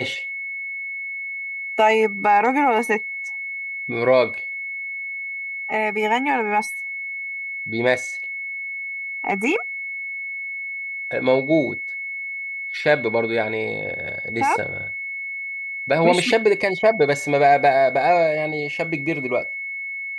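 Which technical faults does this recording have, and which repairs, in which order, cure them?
whine 2.2 kHz -27 dBFS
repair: band-stop 2.2 kHz, Q 30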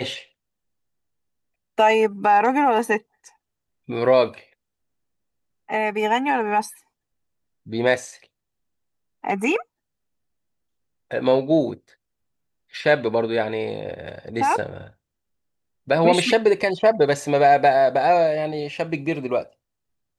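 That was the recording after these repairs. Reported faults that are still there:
nothing left

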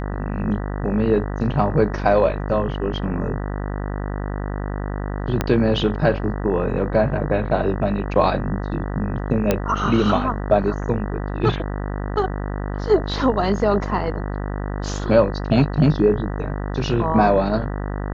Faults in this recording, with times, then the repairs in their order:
buzz 50 Hz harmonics 39 -26 dBFS
5.41 s: pop -6 dBFS
9.51 s: pop -4 dBFS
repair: de-click; de-hum 50 Hz, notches 39

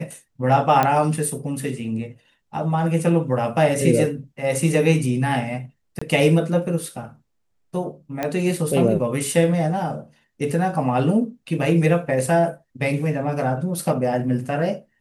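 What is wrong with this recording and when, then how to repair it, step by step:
0.83 s: pop -6 dBFS
5.99–6.01 s: dropout 25 ms
8.23 s: pop -10 dBFS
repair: de-click; interpolate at 5.99 s, 25 ms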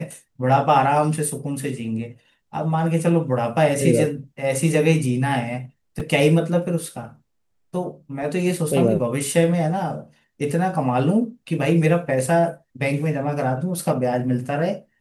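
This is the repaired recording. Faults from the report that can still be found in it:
nothing left

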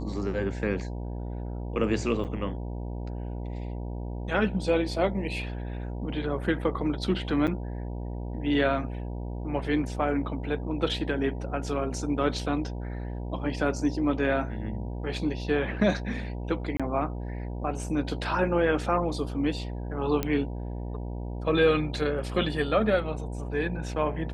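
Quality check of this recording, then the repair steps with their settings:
buzz 60 Hz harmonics 16 -34 dBFS
2.24–2.25 s: dropout 8 ms
7.47–7.48 s: dropout 7.6 ms
16.77–16.80 s: dropout 26 ms
20.23 s: pop -13 dBFS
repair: de-click; de-hum 60 Hz, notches 16; interpolate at 2.24 s, 8 ms; interpolate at 7.47 s, 7.6 ms; interpolate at 16.77 s, 26 ms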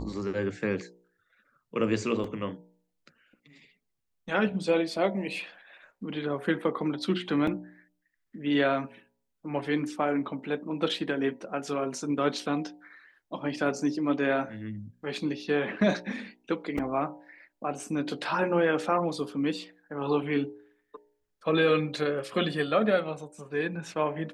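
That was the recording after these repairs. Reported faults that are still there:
nothing left

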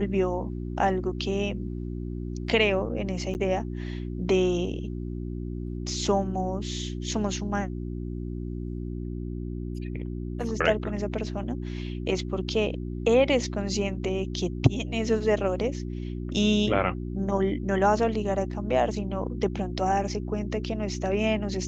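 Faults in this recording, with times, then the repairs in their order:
hum 60 Hz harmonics 6 -33 dBFS
3.34–3.35 s: dropout 9.6 ms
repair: de-hum 60 Hz, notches 6; interpolate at 3.34 s, 9.6 ms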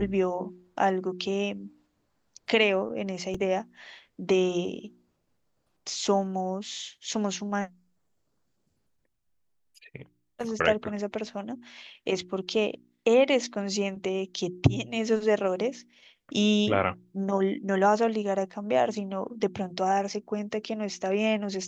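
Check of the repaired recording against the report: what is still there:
nothing left

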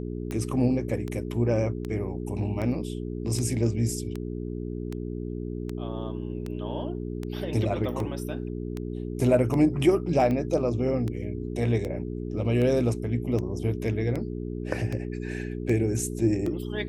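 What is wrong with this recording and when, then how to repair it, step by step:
hum 60 Hz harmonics 7 -33 dBFS
tick 78 rpm -20 dBFS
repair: de-click; de-hum 60 Hz, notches 7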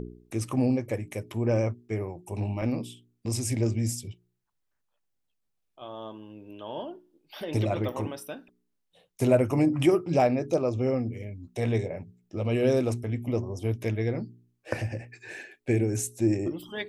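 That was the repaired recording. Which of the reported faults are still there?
nothing left

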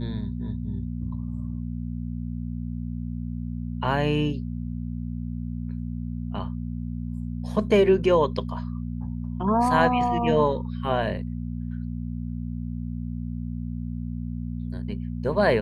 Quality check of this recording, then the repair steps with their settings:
hum 60 Hz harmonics 4 -31 dBFS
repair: de-hum 60 Hz, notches 4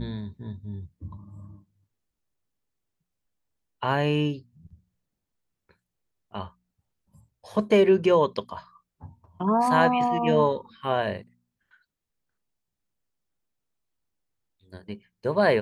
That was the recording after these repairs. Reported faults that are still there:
nothing left

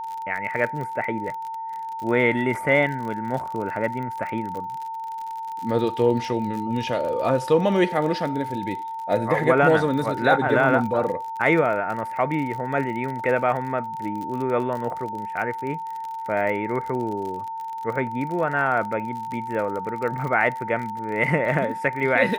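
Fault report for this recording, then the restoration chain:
crackle 47 per s -30 dBFS
whine 900 Hz -29 dBFS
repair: de-click; band-stop 900 Hz, Q 30

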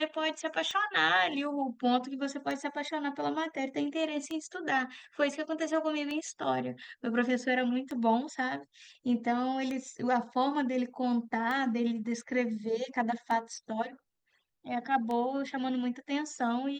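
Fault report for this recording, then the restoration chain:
tick 33 1/3 rpm -23 dBFS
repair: de-click

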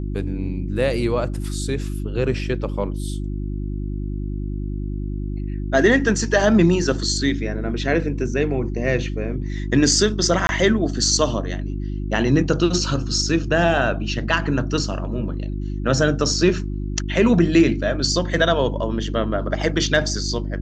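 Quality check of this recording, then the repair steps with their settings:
hum 50 Hz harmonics 7 -26 dBFS
10.47–10.49 s: dropout 21 ms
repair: de-hum 50 Hz, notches 7; interpolate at 10.47 s, 21 ms

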